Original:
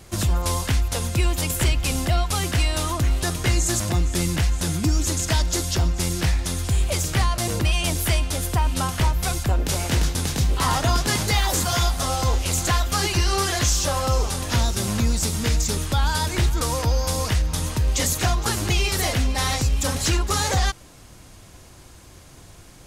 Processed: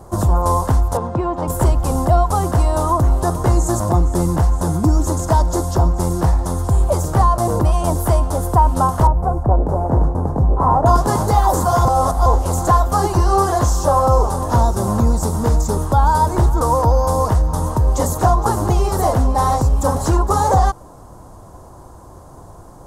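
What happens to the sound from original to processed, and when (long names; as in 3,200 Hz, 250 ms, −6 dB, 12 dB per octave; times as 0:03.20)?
0:00.97–0:01.48: band-pass filter 130–2,700 Hz
0:09.07–0:10.86: drawn EQ curve 700 Hz 0 dB, 2,000 Hz −12 dB, 3,300 Hz −23 dB
0:11.85–0:12.26: reverse
whole clip: drawn EQ curve 250 Hz 0 dB, 1,000 Hz +8 dB, 2,400 Hz −23 dB, 8,300 Hz −8 dB; level +6 dB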